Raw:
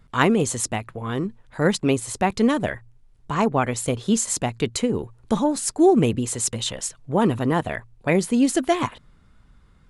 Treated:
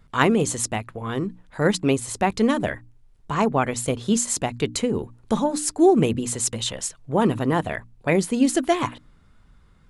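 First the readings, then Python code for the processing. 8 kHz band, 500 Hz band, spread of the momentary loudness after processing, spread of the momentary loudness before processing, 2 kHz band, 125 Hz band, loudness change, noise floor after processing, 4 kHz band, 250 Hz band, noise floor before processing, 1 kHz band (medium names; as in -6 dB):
0.0 dB, 0.0 dB, 10 LU, 10 LU, 0.0 dB, -1.0 dB, -0.5 dB, -55 dBFS, 0.0 dB, -0.5 dB, -55 dBFS, 0.0 dB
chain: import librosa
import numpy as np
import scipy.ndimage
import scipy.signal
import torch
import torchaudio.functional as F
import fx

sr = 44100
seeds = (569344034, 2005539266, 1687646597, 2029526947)

y = fx.hum_notches(x, sr, base_hz=60, count=5)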